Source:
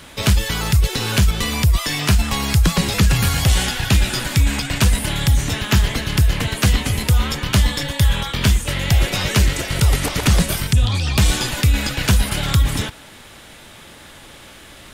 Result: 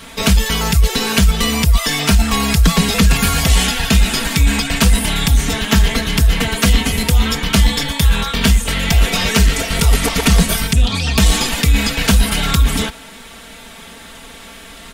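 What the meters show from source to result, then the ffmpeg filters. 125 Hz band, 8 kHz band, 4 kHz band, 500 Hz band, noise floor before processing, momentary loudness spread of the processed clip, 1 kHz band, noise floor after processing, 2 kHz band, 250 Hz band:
+0.5 dB, +4.5 dB, +4.5 dB, +4.5 dB, -42 dBFS, 2 LU, +4.5 dB, -37 dBFS, +4.0 dB, +5.5 dB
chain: -filter_complex "[0:a]aecho=1:1:4.4:0.95,asplit=2[a][b];[b]asoftclip=type=hard:threshold=-12dB,volume=-7dB[c];[a][c]amix=inputs=2:normalize=0,volume=-1dB"

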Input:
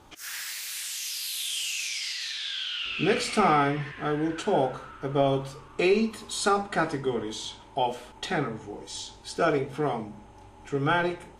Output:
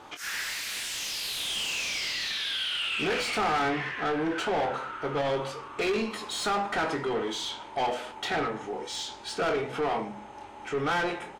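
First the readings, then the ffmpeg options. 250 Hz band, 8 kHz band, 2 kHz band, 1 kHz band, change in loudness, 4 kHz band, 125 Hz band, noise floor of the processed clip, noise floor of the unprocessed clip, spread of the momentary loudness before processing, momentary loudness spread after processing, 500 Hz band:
-4.5 dB, -2.5 dB, +1.0 dB, -1.5 dB, -1.5 dB, +1.5 dB, -7.5 dB, -44 dBFS, -50 dBFS, 13 LU, 7 LU, -3.0 dB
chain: -filter_complex "[0:a]asplit=2[a][b];[b]highpass=f=720:p=1,volume=24dB,asoftclip=type=tanh:threshold=-10.5dB[c];[a][c]amix=inputs=2:normalize=0,lowpass=f=2.4k:p=1,volume=-6dB,asplit=2[d][e];[e]adelay=24,volume=-8dB[f];[d][f]amix=inputs=2:normalize=0,asoftclip=type=tanh:threshold=-13.5dB,volume=-7.5dB"

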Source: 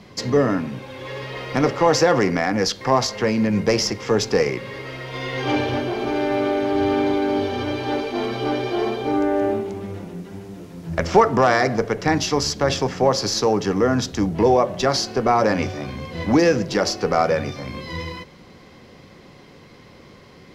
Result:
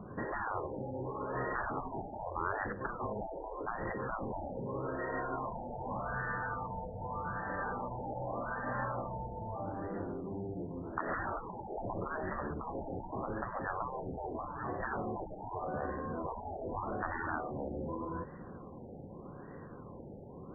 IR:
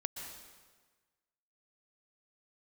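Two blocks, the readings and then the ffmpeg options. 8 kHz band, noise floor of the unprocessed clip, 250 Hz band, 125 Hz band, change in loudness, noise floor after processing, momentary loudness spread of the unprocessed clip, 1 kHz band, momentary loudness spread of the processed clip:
under -40 dB, -46 dBFS, -20.0 dB, -15.5 dB, -18.5 dB, -49 dBFS, 14 LU, -14.0 dB, 6 LU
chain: -af "afftfilt=real='re*lt(hypot(re,im),0.141)':imag='im*lt(hypot(re,im),0.141)':win_size=1024:overlap=0.75,afftfilt=real='re*lt(b*sr/1024,890*pow(2000/890,0.5+0.5*sin(2*PI*0.83*pts/sr)))':imag='im*lt(b*sr/1024,890*pow(2000/890,0.5+0.5*sin(2*PI*0.83*pts/sr)))':win_size=1024:overlap=0.75,volume=-1.5dB"

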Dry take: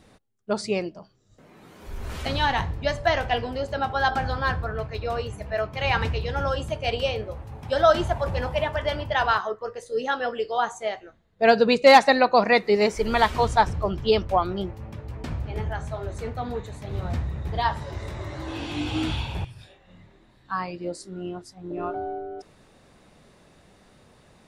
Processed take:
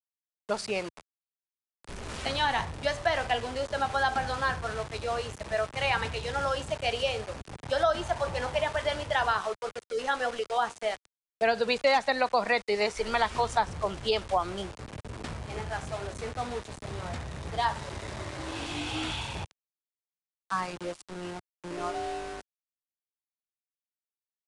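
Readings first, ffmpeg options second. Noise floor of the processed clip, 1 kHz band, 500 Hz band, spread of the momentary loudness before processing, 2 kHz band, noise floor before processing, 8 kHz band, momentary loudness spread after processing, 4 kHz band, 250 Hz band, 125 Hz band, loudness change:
under -85 dBFS, -5.5 dB, -6.5 dB, 16 LU, -4.5 dB, -57 dBFS, +0.5 dB, 13 LU, -3.0 dB, -9.5 dB, -9.0 dB, -6.0 dB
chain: -filter_complex "[0:a]aeval=exprs='val(0)*gte(abs(val(0)),0.0188)':c=same,acrossover=split=100|490[a][b][c];[a]acompressor=threshold=-43dB:ratio=4[d];[b]acompressor=threshold=-39dB:ratio=4[e];[c]acompressor=threshold=-22dB:ratio=4[f];[d][e][f]amix=inputs=3:normalize=0,aresample=22050,aresample=44100,volume=-1dB"

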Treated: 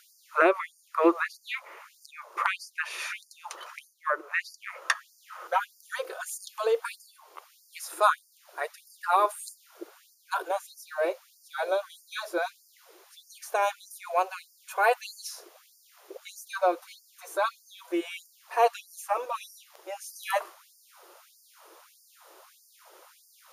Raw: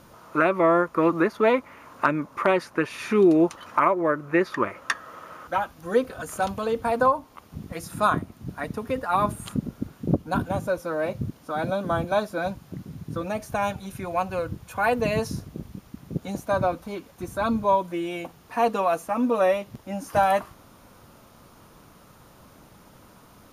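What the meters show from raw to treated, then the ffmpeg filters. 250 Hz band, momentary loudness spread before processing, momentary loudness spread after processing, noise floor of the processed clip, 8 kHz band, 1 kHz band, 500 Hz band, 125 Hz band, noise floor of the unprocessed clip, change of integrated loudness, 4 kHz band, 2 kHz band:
-12.0 dB, 14 LU, 21 LU, -62 dBFS, +2.0 dB, -4.0 dB, -6.5 dB, under -40 dB, -53 dBFS, -5.0 dB, 0.0 dB, -1.5 dB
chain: -af "bass=f=250:g=13,treble=f=4k:g=2,afftfilt=real='re*gte(b*sr/1024,310*pow(4600/310,0.5+0.5*sin(2*PI*1.6*pts/sr)))':imag='im*gte(b*sr/1024,310*pow(4600/310,0.5+0.5*sin(2*PI*1.6*pts/sr)))':win_size=1024:overlap=0.75"

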